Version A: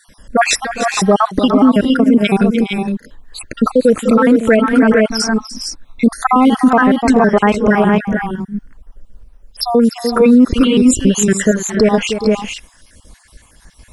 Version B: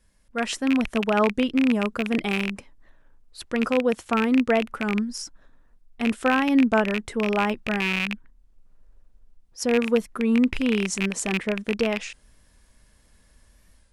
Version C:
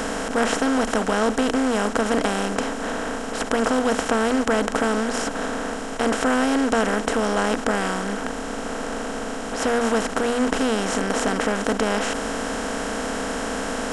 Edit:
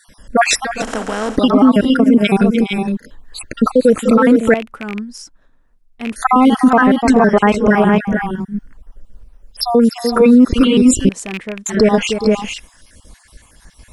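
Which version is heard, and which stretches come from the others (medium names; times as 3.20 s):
A
0.82–1.37 s: from C
4.54–6.16 s: from B
11.09–11.66 s: from B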